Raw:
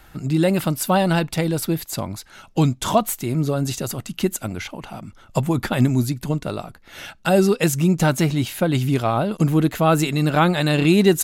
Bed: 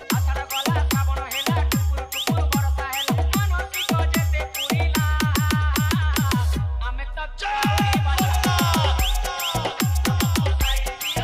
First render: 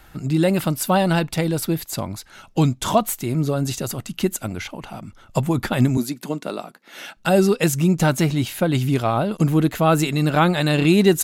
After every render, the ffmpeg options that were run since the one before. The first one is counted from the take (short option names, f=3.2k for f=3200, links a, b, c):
-filter_complex "[0:a]asettb=1/sr,asplit=3[a][b][c];[a]atrim=end=5.974[d];[b]atrim=start=5.97:end=7.17,asetpts=PTS-STARTPTS,afade=t=in:d=0.004:c=qsin,afade=t=out:st=1.196:d=0.004:c=qsin,highpass=f=200:w=0.5412,highpass=f=200:w=1.3066[e];[c]atrim=start=7.166[f];[d][e]acrossfade=d=0.004:c1=hsin:c2=qsin[g];[g][f]acrossfade=d=0.004:c1=qsin:c2=hsin"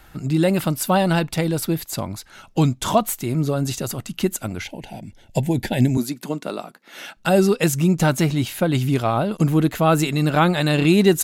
-filter_complex "[0:a]asettb=1/sr,asplit=3[a][b][c];[a]atrim=end=4.644[d];[b]atrim=start=4.64:end=5.95,asetpts=PTS-STARTPTS,afade=t=in:d=0.004:c=qsin,afade=t=out:st=1.306:d=0.004:c=qsin,asuperstop=centerf=1200:order=4:qfactor=1.5[e];[c]atrim=start=5.946[f];[d][e]acrossfade=d=0.004:c1=hsin:c2=qsin[g];[g][f]acrossfade=d=0.004:c1=qsin:c2=hsin"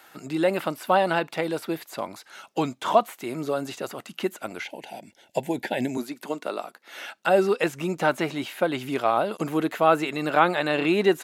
-filter_complex "[0:a]acrossover=split=3000[a][b];[b]acompressor=threshold=-44dB:ratio=4:attack=1:release=60[c];[a][c]amix=inputs=2:normalize=0,highpass=410"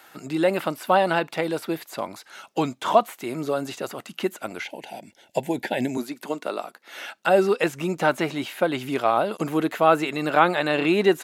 -af "volume=1.5dB"